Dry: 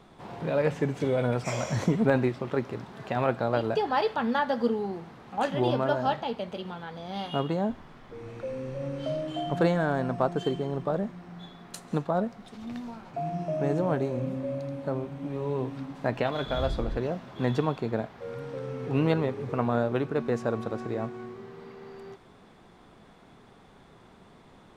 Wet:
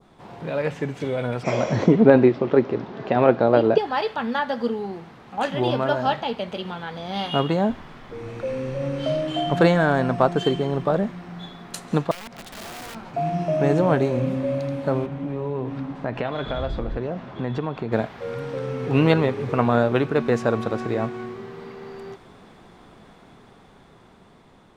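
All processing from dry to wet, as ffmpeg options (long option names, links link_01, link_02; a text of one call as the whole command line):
ffmpeg -i in.wav -filter_complex "[0:a]asettb=1/sr,asplit=3[link_01][link_02][link_03];[link_01]atrim=end=1.434[link_04];[link_02]atrim=start=1.43:end=3.78,asetpts=PTS-STARTPTS,afade=type=in:duration=0.004:curve=qsin,afade=type=out:start_time=2.346:duration=0.004:curve=qsin,lowpass=frequency=5900:width=0.5412,lowpass=frequency=5900:width=1.3066,equalizer=frequency=370:width_type=o:width=2.4:gain=12[link_05];[link_03]atrim=start=3.776[link_06];[link_04][link_05]acrossfade=duration=0.004:curve1=hsin:curve2=qsin[link_07];[link_07][link_06]acrossfade=duration=0.004:curve1=qsin:curve2=hsin,asettb=1/sr,asplit=3[link_08][link_09][link_10];[link_08]atrim=end=12.114[link_11];[link_09]atrim=start=12.11:end=12.95,asetpts=PTS-STARTPTS,afade=type=in:duration=0.004:curve=qsin,afade=type=out:start_time=0.836:duration=0.004:curve=qsin,acompressor=threshold=-39dB:ratio=12:attack=3.2:release=140:knee=1:detection=peak,aeval=exprs='(mod(106*val(0)+1,2)-1)/106':channel_layout=same[link_12];[link_10]atrim=start=12.946[link_13];[link_11][link_12]acrossfade=duration=0.004:curve1=hsin:curve2=qsin[link_14];[link_14][link_13]acrossfade=duration=0.004:curve1=qsin:curve2=hsin,asettb=1/sr,asplit=3[link_15][link_16][link_17];[link_15]atrim=end=15.064[link_18];[link_16]atrim=start=15.06:end=17.92,asetpts=PTS-STARTPTS,afade=type=in:duration=0.004:curve=qsin,afade=type=out:start_time=2.856:duration=0.004:curve=qsin,lowpass=frequency=1900:poles=1,acompressor=threshold=-32dB:ratio=2.5:attack=3.2:release=140:knee=1:detection=peak[link_19];[link_17]atrim=start=17.916[link_20];[link_18][link_19]acrossfade=duration=0.004:curve1=hsin:curve2=qsin[link_21];[link_21][link_20]acrossfade=duration=0.004:curve1=qsin:curve2=hsin,adynamicequalizer=threshold=0.00501:dfrequency=2600:dqfactor=0.71:tfrequency=2600:tqfactor=0.71:attack=5:release=100:ratio=0.375:range=2:mode=boostabove:tftype=bell,dynaudnorm=framelen=770:gausssize=7:maxgain=8dB" out.wav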